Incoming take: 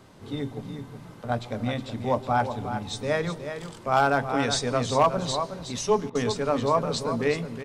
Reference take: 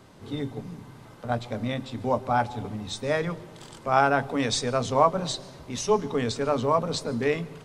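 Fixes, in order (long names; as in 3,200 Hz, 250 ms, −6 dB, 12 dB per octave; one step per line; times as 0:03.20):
clipped peaks rebuilt −12 dBFS
repair the gap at 0:06.10, 50 ms
echo removal 367 ms −9 dB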